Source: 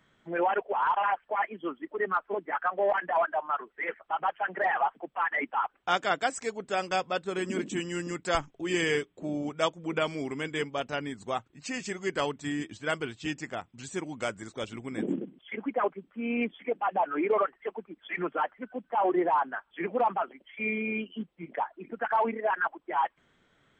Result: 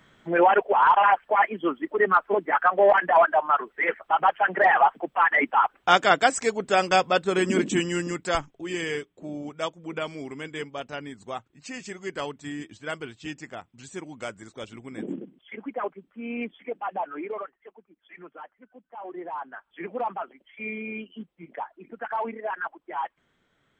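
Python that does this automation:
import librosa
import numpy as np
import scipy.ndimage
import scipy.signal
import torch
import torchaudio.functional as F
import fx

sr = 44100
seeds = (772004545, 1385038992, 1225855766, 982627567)

y = fx.gain(x, sr, db=fx.line((7.75, 8.5), (8.77, -2.5), (16.98, -2.5), (17.72, -13.5), (19.04, -13.5), (19.71, -3.0)))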